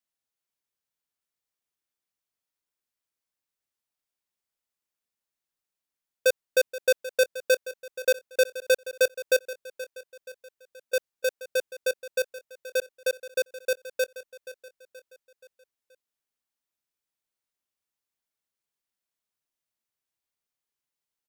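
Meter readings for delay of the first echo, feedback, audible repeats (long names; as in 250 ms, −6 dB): 477 ms, 48%, 4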